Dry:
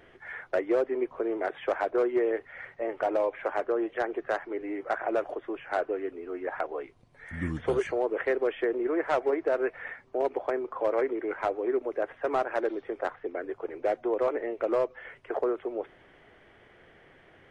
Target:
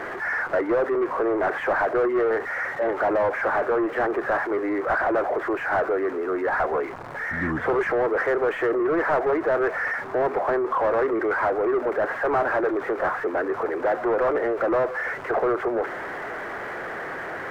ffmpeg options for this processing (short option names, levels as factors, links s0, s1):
-filter_complex "[0:a]aeval=exprs='val(0)+0.5*0.00794*sgn(val(0))':c=same,asplit=2[s0][s1];[s1]highpass=f=720:p=1,volume=15.8,asoftclip=type=tanh:threshold=0.168[s2];[s0][s2]amix=inputs=2:normalize=0,lowpass=f=2100:p=1,volume=0.501,highshelf=f=2200:t=q:w=1.5:g=-10.5"